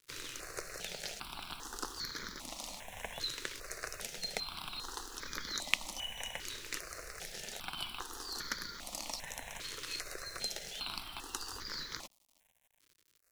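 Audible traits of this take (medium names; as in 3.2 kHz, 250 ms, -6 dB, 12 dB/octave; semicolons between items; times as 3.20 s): a quantiser's noise floor 10-bit, dither none; notches that jump at a steady rate 2.5 Hz 200–2700 Hz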